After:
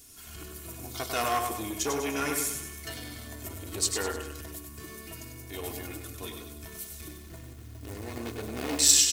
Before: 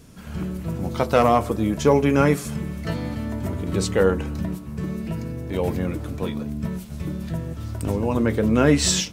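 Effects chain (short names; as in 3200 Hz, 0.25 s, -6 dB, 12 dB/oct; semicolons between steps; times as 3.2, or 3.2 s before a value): 7.08–8.79 median filter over 41 samples; pre-emphasis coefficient 0.9; comb 2.8 ms, depth 78%; feedback echo 98 ms, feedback 45%, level -6 dB; core saturation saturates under 3400 Hz; gain +4 dB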